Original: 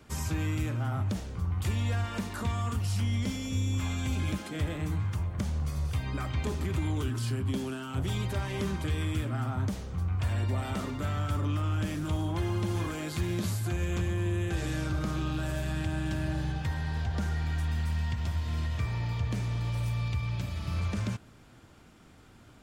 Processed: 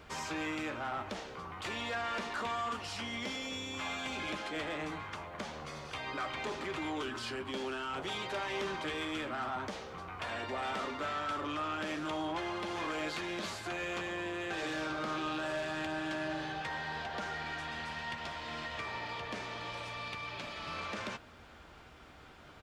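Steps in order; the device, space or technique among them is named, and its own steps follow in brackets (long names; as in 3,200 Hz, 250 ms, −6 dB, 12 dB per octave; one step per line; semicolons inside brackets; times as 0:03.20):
aircraft cabin announcement (band-pass filter 490–4,200 Hz; soft clipping −35.5 dBFS, distortion −17 dB; brown noise bed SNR 14 dB)
high-pass filter 53 Hz
double-tracking delay 13 ms −12 dB
level +5 dB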